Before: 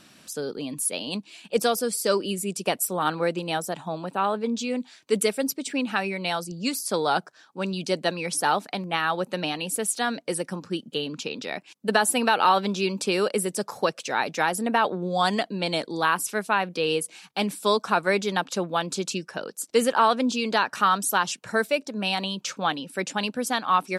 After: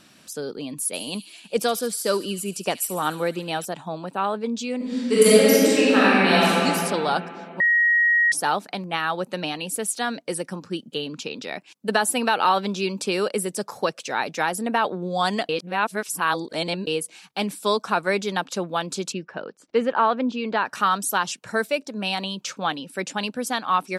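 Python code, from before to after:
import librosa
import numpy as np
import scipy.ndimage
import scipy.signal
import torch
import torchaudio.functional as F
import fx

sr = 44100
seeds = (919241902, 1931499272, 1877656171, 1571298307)

y = fx.echo_wet_highpass(x, sr, ms=73, feedback_pct=67, hz=2900.0, wet_db=-12, at=(0.93, 3.64), fade=0.02)
y = fx.reverb_throw(y, sr, start_s=4.76, length_s=1.73, rt60_s=2.9, drr_db=-10.5)
y = fx.lowpass(y, sr, hz=2400.0, slope=12, at=(19.11, 20.64), fade=0.02)
y = fx.edit(y, sr, fx.bleep(start_s=7.6, length_s=0.72, hz=1890.0, db=-15.0),
    fx.reverse_span(start_s=15.49, length_s=1.38), tone=tone)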